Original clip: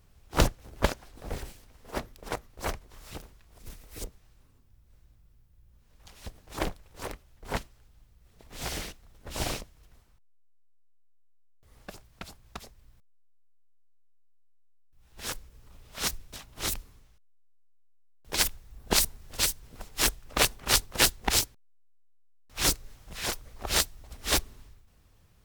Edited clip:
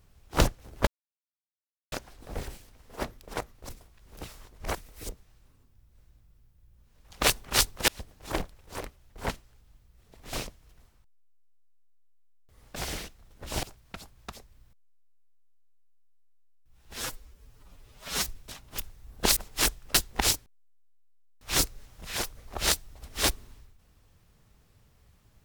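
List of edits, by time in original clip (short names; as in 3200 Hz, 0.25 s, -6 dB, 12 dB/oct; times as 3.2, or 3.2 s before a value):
0.87 insert silence 1.05 s
2.64–3.7 reverse
8.6–9.47 move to 11.9
15.25–16.1 stretch 1.5×
16.63–18.46 cut
19.04–19.77 cut
20.35–21.03 move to 6.15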